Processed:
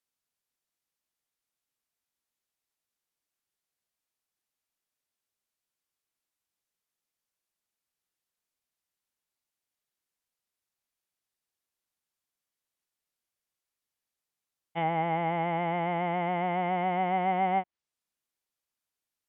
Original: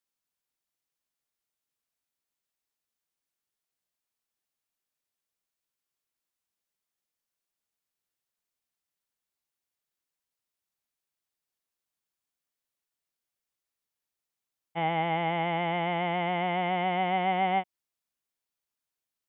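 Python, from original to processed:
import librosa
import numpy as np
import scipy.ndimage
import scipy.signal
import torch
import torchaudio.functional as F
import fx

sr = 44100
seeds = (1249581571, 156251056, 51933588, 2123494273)

y = fx.env_lowpass_down(x, sr, base_hz=1900.0, full_db=-25.5)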